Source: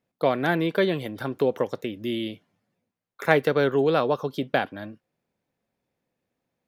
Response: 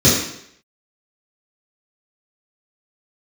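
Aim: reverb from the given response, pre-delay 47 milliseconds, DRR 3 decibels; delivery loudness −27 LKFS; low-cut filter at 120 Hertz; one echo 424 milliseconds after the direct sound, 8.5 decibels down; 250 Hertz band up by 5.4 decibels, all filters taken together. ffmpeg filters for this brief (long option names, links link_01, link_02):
-filter_complex "[0:a]highpass=120,equalizer=frequency=250:width_type=o:gain=7.5,aecho=1:1:424:0.376,asplit=2[link_01][link_02];[1:a]atrim=start_sample=2205,adelay=47[link_03];[link_02][link_03]afir=irnorm=-1:irlink=0,volume=-26dB[link_04];[link_01][link_04]amix=inputs=2:normalize=0,volume=-10.5dB"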